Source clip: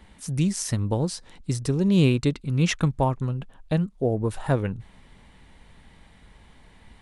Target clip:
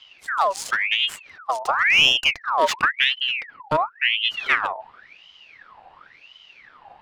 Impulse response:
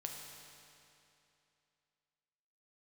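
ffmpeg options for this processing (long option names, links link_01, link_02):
-af "adynamicsmooth=sensitivity=8:basefreq=2300,aeval=exprs='val(0)*sin(2*PI*1900*n/s+1900*0.6/0.94*sin(2*PI*0.94*n/s))':channel_layout=same,volume=5dB"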